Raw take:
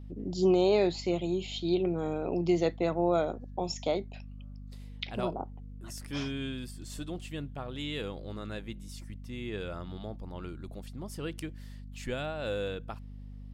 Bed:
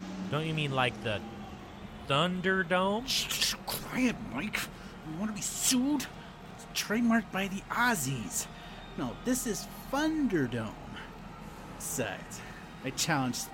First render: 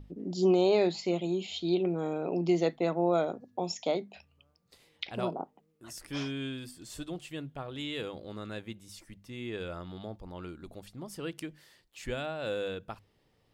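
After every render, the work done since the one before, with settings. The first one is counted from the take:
mains-hum notches 50/100/150/200/250 Hz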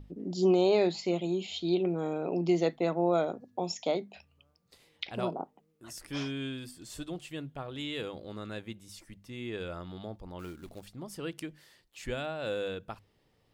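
0:10.39–0:10.91: floating-point word with a short mantissa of 2 bits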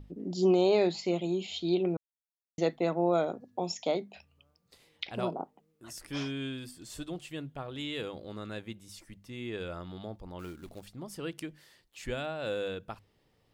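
0:01.97–0:02.58: silence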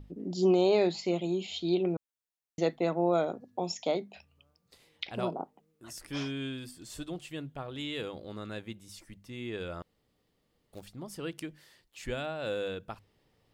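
0:09.82–0:10.73: fill with room tone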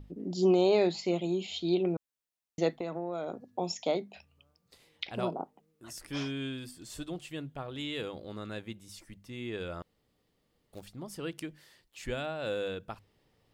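0:02.69–0:03.40: downward compressor, threshold −31 dBFS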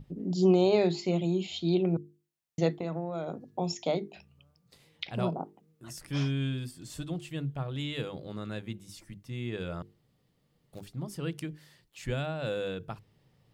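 parametric band 140 Hz +12 dB 0.88 octaves
mains-hum notches 50/100/150/200/250/300/350/400/450 Hz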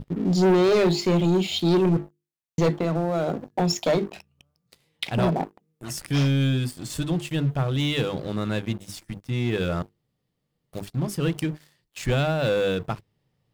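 leveller curve on the samples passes 3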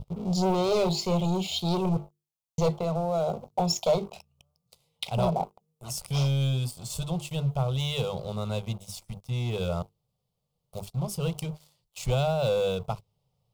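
phaser with its sweep stopped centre 720 Hz, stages 4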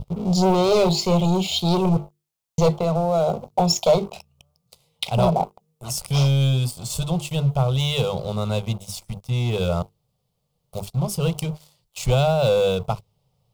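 level +7 dB

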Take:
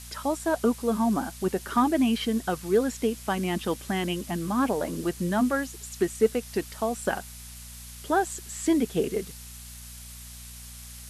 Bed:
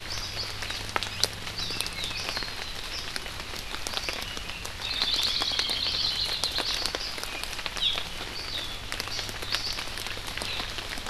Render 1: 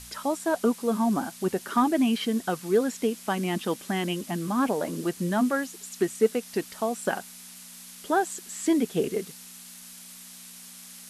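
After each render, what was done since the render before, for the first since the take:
hum removal 60 Hz, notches 2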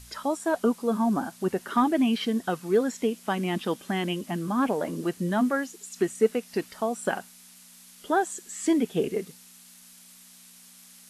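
noise reduction from a noise print 6 dB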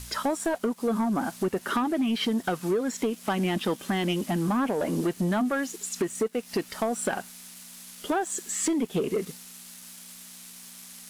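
downward compressor 20 to 1, threshold −28 dBFS, peak gain reduction 14 dB
leveller curve on the samples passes 2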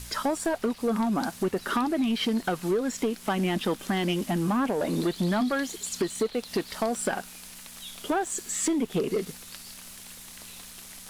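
mix in bed −17.5 dB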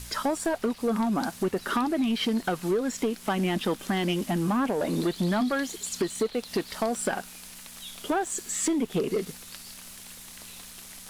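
no processing that can be heard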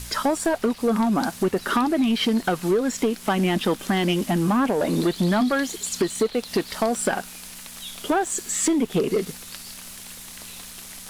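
level +5 dB

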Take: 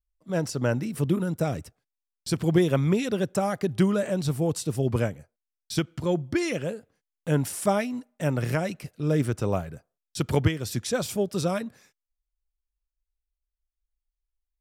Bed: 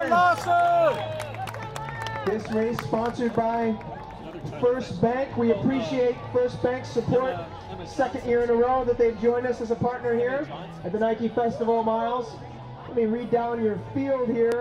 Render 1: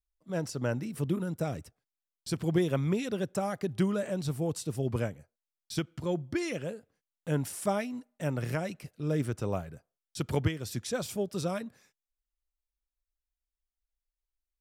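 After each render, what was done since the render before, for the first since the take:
level −6 dB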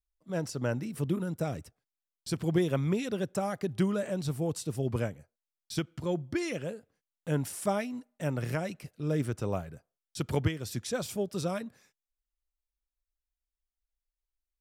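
no processing that can be heard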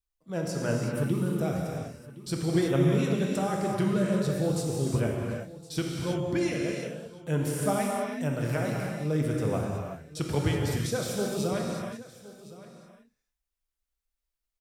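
single-tap delay 1,065 ms −18 dB
reverb whose tail is shaped and stops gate 400 ms flat, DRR −1.5 dB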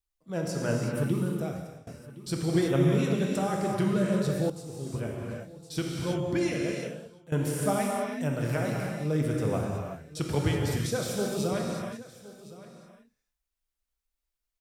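0:01.19–0:01.87: fade out, to −22 dB
0:04.50–0:05.99: fade in, from −13.5 dB
0:06.87–0:07.32: fade out, to −16 dB

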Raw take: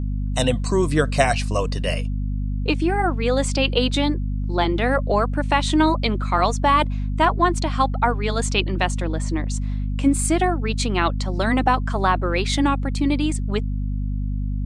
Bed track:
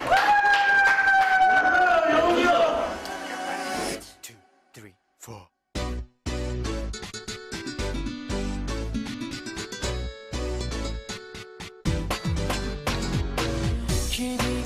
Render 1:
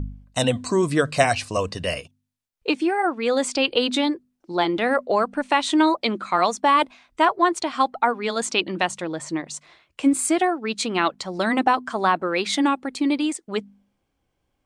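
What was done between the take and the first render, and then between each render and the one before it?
hum removal 50 Hz, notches 5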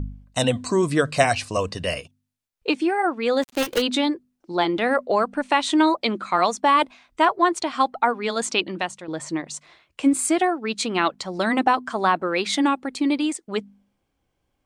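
0:03.42–0:03.82: gap after every zero crossing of 0.15 ms
0:08.55–0:09.08: fade out, to −10.5 dB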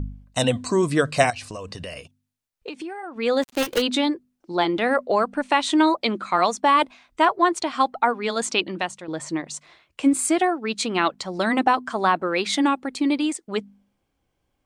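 0:01.30–0:03.16: downward compressor 10 to 1, threshold −30 dBFS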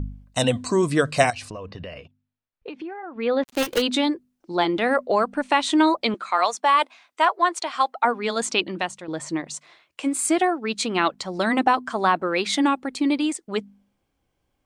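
0:01.50–0:03.46: high-frequency loss of the air 280 metres
0:06.14–0:08.05: high-pass filter 560 Hz
0:09.54–0:10.24: high-pass filter 190 Hz → 660 Hz 6 dB per octave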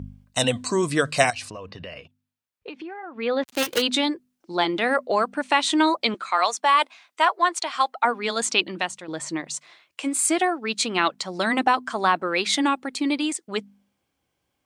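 high-pass filter 76 Hz
tilt shelving filter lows −3 dB, about 1,200 Hz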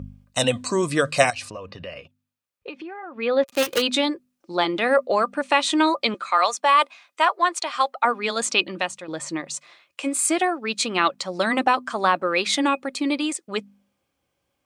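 hollow resonant body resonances 550/1,200/2,500 Hz, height 8 dB, ringing for 65 ms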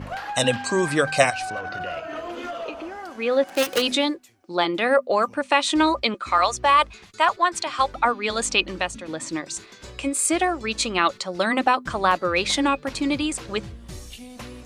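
mix in bed track −12.5 dB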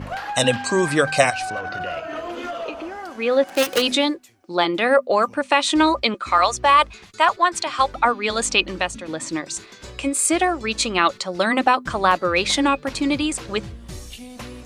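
level +2.5 dB
brickwall limiter −2 dBFS, peak gain reduction 2.5 dB

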